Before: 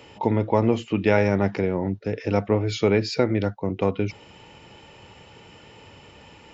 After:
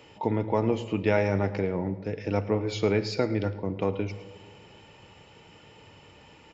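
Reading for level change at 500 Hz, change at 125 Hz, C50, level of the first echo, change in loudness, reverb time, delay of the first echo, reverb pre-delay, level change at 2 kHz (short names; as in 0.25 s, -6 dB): -4.5 dB, -4.5 dB, 13.5 dB, -17.5 dB, -4.5 dB, 1.7 s, 0.109 s, 6 ms, -5.0 dB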